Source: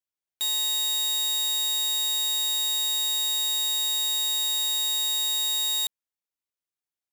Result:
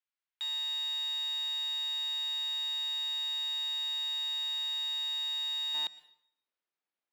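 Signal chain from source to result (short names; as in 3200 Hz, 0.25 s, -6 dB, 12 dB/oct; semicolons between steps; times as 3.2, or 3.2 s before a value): Bessel high-pass 1400 Hz, order 4, from 5.73 s 270 Hz; limiter -23.5 dBFS, peak gain reduction 5.5 dB; air absorption 260 m; plate-style reverb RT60 0.68 s, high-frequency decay 0.9×, pre-delay 95 ms, DRR 18 dB; gain +6 dB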